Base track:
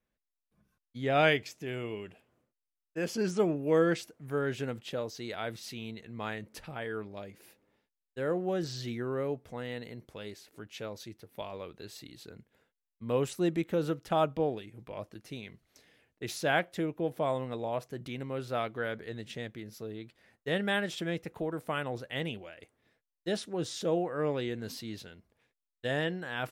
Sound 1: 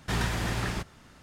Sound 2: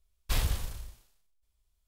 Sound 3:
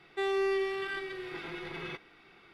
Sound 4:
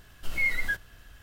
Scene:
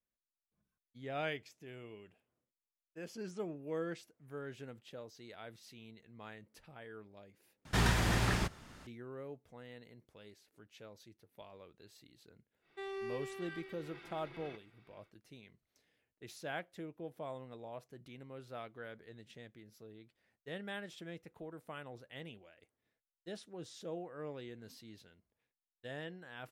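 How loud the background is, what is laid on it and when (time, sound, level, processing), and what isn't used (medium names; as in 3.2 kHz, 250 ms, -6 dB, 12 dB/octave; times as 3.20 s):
base track -13.5 dB
7.65 s: replace with 1 -1 dB
12.60 s: add 3 -12.5 dB, fades 0.10 s
not used: 2, 4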